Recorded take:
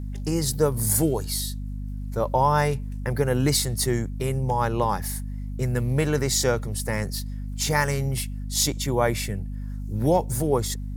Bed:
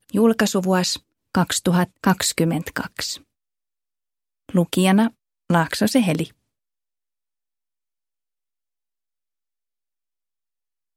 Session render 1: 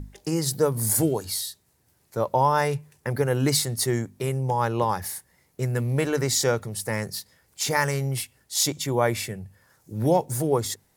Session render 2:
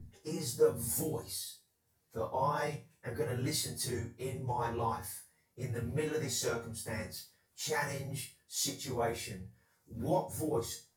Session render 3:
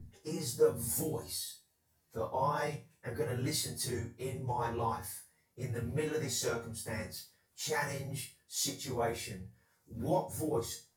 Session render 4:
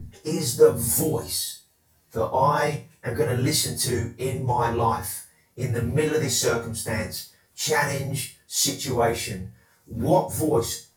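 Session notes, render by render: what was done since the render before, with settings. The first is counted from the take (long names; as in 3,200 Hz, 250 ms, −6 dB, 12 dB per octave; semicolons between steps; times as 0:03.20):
mains-hum notches 50/100/150/200/250 Hz
random phases in long frames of 50 ms; resonators tuned to a chord D#2 minor, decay 0.3 s
0:01.20–0:02.17: double-tracking delay 14 ms −5 dB
level +12 dB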